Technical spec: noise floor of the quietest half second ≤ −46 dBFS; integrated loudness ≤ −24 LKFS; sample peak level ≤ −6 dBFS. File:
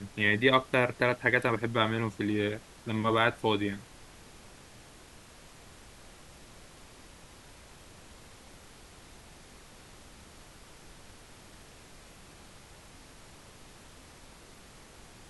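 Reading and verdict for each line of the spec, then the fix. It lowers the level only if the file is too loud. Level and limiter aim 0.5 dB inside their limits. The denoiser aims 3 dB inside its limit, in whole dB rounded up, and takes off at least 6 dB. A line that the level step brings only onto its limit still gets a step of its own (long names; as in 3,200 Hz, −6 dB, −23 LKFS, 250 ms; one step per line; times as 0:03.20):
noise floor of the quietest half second −53 dBFS: in spec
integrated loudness −28.0 LKFS: in spec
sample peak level −9.5 dBFS: in spec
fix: no processing needed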